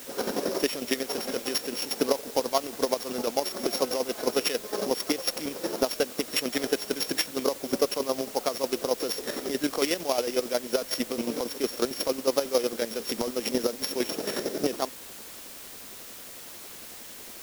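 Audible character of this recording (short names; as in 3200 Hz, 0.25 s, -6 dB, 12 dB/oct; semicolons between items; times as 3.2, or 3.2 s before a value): a buzz of ramps at a fixed pitch in blocks of 8 samples; chopped level 11 Hz, depth 60%, duty 35%; a quantiser's noise floor 8-bit, dither triangular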